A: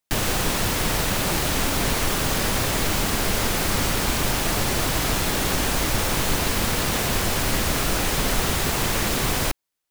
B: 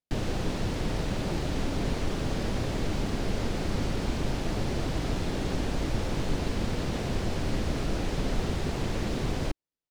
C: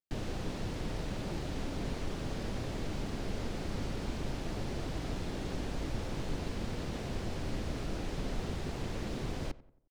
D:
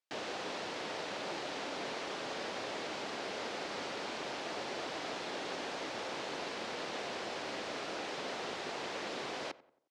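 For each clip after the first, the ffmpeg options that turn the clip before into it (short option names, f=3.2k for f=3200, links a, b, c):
-af "firequalizer=gain_entry='entry(310,0);entry(1100,-10);entry(4500,-10);entry(14000,-29)':delay=0.05:min_phase=1,volume=-3.5dB"
-filter_complex "[0:a]asplit=2[a][b];[b]adelay=90,lowpass=f=1.8k:p=1,volume=-18dB,asplit=2[c][d];[d]adelay=90,lowpass=f=1.8k:p=1,volume=0.45,asplit=2[e][f];[f]adelay=90,lowpass=f=1.8k:p=1,volume=0.45,asplit=2[g][h];[h]adelay=90,lowpass=f=1.8k:p=1,volume=0.45[i];[a][c][e][g][i]amix=inputs=5:normalize=0,volume=-7.5dB"
-af "highpass=560,lowpass=5.9k,volume=6dB"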